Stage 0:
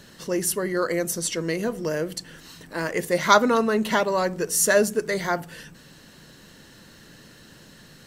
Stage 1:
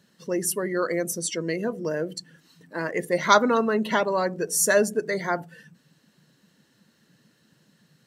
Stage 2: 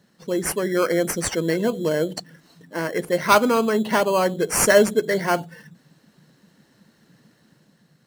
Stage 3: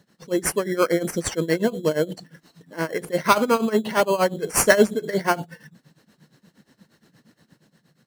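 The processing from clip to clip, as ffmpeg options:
-af "afftdn=nr=14:nf=-35,highpass=130,volume=-1dB"
-filter_complex "[0:a]dynaudnorm=f=120:g=11:m=3.5dB,asplit=2[a][b];[b]acrusher=samples=12:mix=1:aa=0.000001,volume=-3dB[c];[a][c]amix=inputs=2:normalize=0,volume=-2dB"
-af "tremolo=f=8.5:d=0.86,volume=3dB"

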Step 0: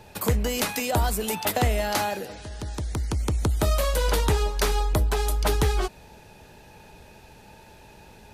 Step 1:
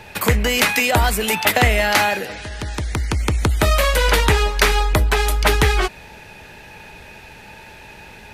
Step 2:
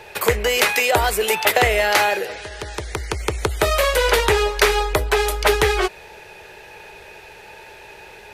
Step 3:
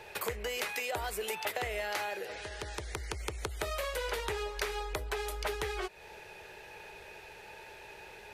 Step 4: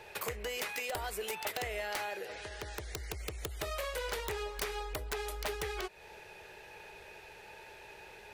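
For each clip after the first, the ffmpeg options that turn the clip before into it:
-af "equalizer=f=2.1k:t=o:w=1.4:g=10.5,volume=5.5dB"
-af "lowshelf=f=320:t=q:w=3:g=-6.5,volume=-1dB"
-af "acompressor=threshold=-27dB:ratio=3,volume=-8.5dB"
-af "aeval=exprs='(mod(16.8*val(0)+1,2)-1)/16.8':c=same,volume=-2dB"

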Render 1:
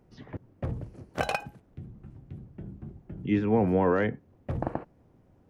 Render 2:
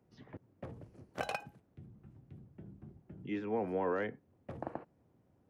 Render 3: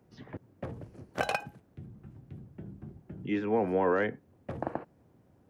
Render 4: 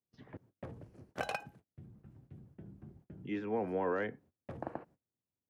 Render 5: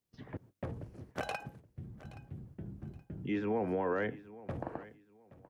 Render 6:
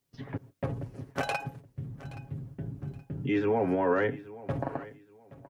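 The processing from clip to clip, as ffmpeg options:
-filter_complex "[0:a]highpass=75,acrossover=split=270[a][b];[a]acompressor=threshold=-39dB:ratio=6[c];[c][b]amix=inputs=2:normalize=0,volume=-8.5dB"
-af "equalizer=f=1.6k:w=7.7:g=2.5,volume=7dB"
-af "agate=range=-27dB:threshold=-53dB:ratio=16:detection=peak,volume=-7dB"
-af "lowshelf=f=61:g=10,alimiter=level_in=5.5dB:limit=-24dB:level=0:latency=1:release=120,volume=-5.5dB,aecho=1:1:823|1646:0.119|0.0297,volume=5dB"
-af "aecho=1:1:7.3:0.65,volume=5.5dB"

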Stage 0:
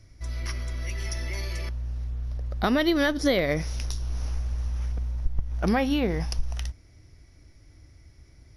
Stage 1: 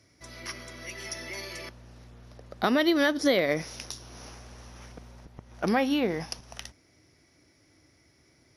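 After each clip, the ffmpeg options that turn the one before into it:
-af "highpass=210"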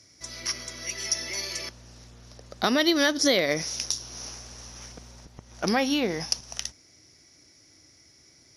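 -af "equalizer=f=6.2k:t=o:w=1.4:g=13"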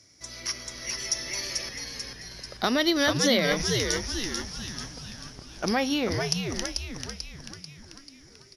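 -filter_complex "[0:a]asplit=8[a][b][c][d][e][f][g][h];[b]adelay=440,afreqshift=-110,volume=-4.5dB[i];[c]adelay=880,afreqshift=-220,volume=-10.2dB[j];[d]adelay=1320,afreqshift=-330,volume=-15.9dB[k];[e]adelay=1760,afreqshift=-440,volume=-21.5dB[l];[f]adelay=2200,afreqshift=-550,volume=-27.2dB[m];[g]adelay=2640,afreqshift=-660,volume=-32.9dB[n];[h]adelay=3080,afreqshift=-770,volume=-38.6dB[o];[a][i][j][k][l][m][n][o]amix=inputs=8:normalize=0,volume=-1.5dB"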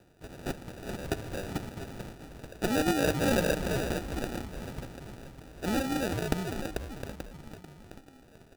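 -af "acrusher=samples=41:mix=1:aa=0.000001,volume=-3.5dB"

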